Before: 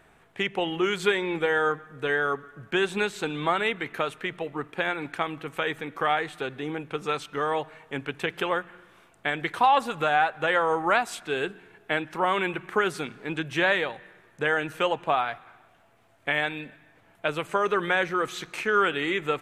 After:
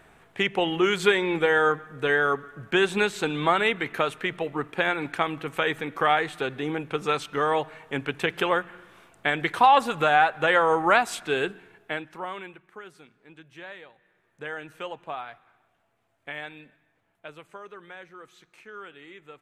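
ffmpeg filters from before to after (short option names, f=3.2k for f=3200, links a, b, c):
-af "volume=11.5dB,afade=t=out:st=11.32:d=0.76:silence=0.298538,afade=t=out:st=12.08:d=0.55:silence=0.266073,afade=t=in:st=13.95:d=0.47:silence=0.375837,afade=t=out:st=16.59:d=1.13:silence=0.354813"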